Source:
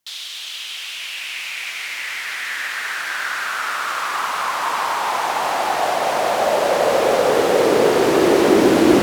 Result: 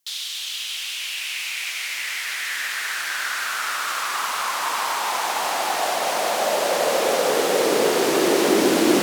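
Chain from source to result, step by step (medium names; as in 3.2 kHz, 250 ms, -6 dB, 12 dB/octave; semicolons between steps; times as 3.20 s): high-pass 150 Hz 24 dB/octave; treble shelf 3 kHz +10 dB; short-mantissa float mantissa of 4-bit; trim -5 dB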